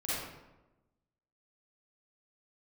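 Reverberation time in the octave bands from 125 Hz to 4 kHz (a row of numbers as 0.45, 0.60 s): 1.3, 1.2, 1.1, 1.0, 0.80, 0.60 s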